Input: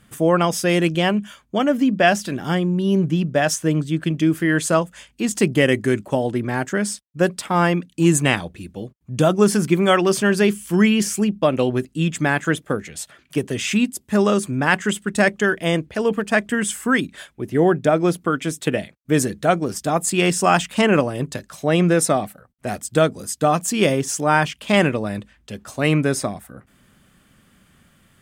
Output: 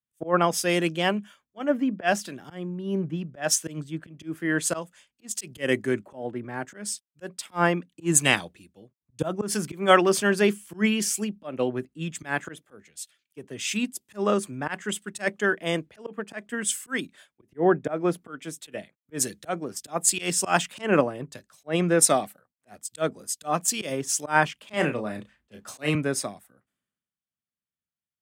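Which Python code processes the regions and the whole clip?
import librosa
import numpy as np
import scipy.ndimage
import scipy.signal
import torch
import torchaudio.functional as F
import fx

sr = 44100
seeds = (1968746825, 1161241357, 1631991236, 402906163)

y = fx.chain(x, sr, fx.doubler(ms=33.0, db=-8),
    fx.band_squash(depth_pct=70), at=(24.73, 25.95))
y = fx.highpass(y, sr, hz=240.0, slope=6)
y = fx.auto_swell(y, sr, attack_ms=109.0)
y = fx.band_widen(y, sr, depth_pct=100)
y = F.gain(torch.from_numpy(y), -5.5).numpy()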